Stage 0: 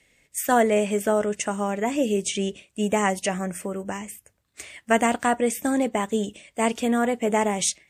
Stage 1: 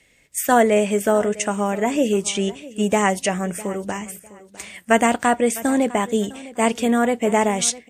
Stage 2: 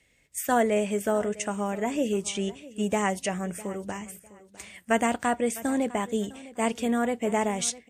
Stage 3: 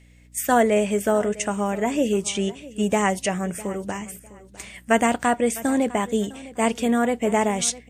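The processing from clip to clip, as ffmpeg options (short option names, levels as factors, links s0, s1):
-af "aecho=1:1:654|1308:0.112|0.0292,volume=1.58"
-af "equalizer=f=70:t=o:w=1.9:g=5,volume=0.398"
-af "aeval=exprs='val(0)+0.00158*(sin(2*PI*60*n/s)+sin(2*PI*2*60*n/s)/2+sin(2*PI*3*60*n/s)/3+sin(2*PI*4*60*n/s)/4+sin(2*PI*5*60*n/s)/5)':c=same,volume=1.78"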